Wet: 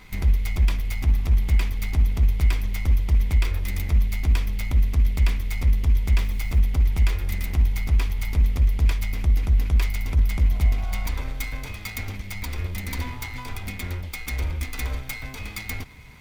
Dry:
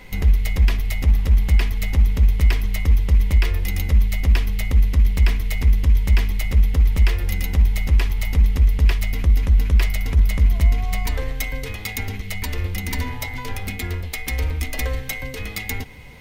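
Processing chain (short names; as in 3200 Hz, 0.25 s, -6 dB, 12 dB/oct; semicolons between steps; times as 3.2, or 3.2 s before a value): minimum comb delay 0.86 ms; 6.18–6.59 requantised 8-bit, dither none; gain -3.5 dB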